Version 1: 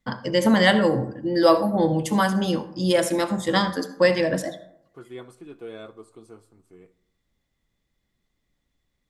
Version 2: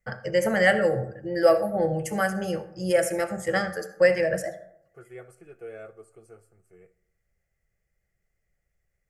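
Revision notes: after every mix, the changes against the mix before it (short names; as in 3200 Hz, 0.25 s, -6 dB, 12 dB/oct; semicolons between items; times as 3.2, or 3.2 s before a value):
master: add fixed phaser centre 1000 Hz, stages 6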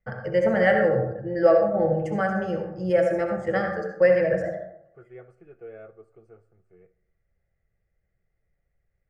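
first voice: send +11.5 dB; master: add tape spacing loss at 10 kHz 29 dB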